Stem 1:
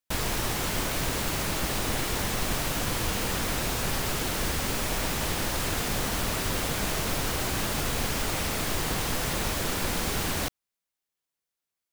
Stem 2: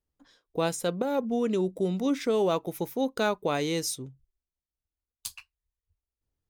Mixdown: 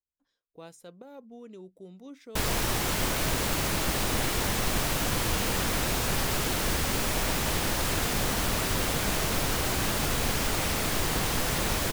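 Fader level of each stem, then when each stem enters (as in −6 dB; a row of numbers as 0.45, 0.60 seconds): +1.0, −19.0 decibels; 2.25, 0.00 seconds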